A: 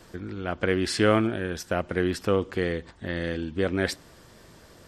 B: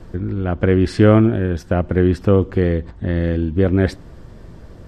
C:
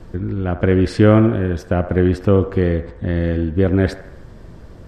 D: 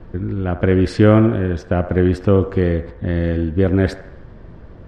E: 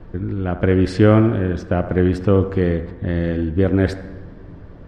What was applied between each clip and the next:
tilt -3.5 dB/oct; gain +4 dB
band-limited delay 77 ms, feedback 54%, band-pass 990 Hz, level -10 dB
low-pass opened by the level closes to 2500 Hz, open at -11 dBFS
reverb RT60 2.1 s, pre-delay 7 ms, DRR 15.5 dB; gain -1 dB

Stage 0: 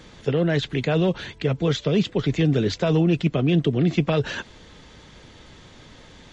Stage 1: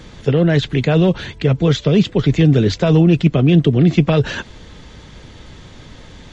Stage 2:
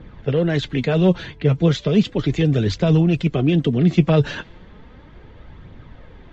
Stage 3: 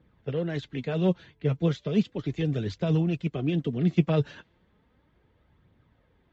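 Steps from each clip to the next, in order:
low shelf 170 Hz +7 dB; gain +5 dB
low-pass opened by the level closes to 1700 Hz, open at -9 dBFS; flange 0.35 Hz, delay 0.2 ms, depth 6.8 ms, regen +53%
HPF 57 Hz; upward expander 1.5:1, over -37 dBFS; gain -6.5 dB

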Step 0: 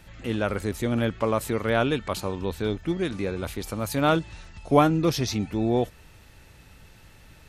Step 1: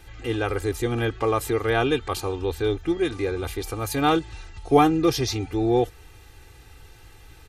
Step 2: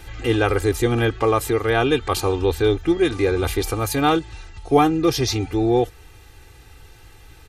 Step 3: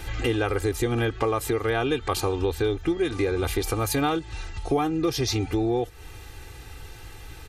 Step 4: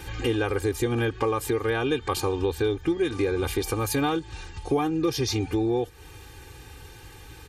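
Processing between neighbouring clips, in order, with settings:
comb 2.5 ms, depth 85%
vocal rider within 4 dB 0.5 s; gain +4 dB
compressor 4:1, threshold -27 dBFS, peak gain reduction 14.5 dB; gain +4 dB
notch comb 670 Hz

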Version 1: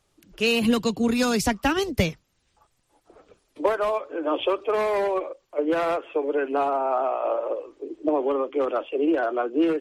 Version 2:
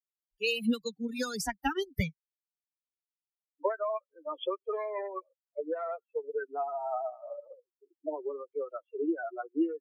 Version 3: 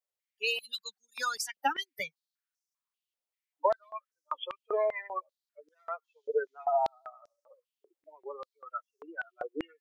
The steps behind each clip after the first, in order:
per-bin expansion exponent 3; gain -3.5 dB
spectral gain 6.04–6.65, 3000–7300 Hz +11 dB; stepped high-pass 5.1 Hz 540–5700 Hz

